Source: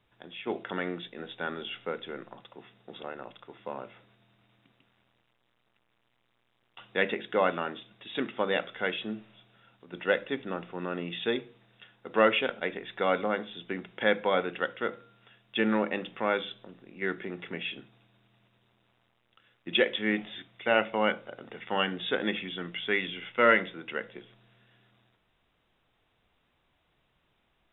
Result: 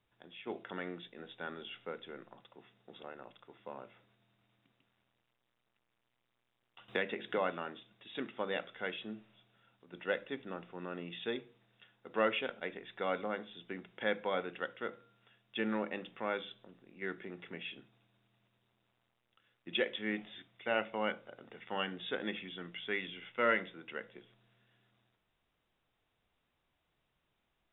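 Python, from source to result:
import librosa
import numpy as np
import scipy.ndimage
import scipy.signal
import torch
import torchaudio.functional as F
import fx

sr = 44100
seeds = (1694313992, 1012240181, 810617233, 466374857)

y = fx.band_squash(x, sr, depth_pct=100, at=(6.88, 7.38))
y = y * 10.0 ** (-8.5 / 20.0)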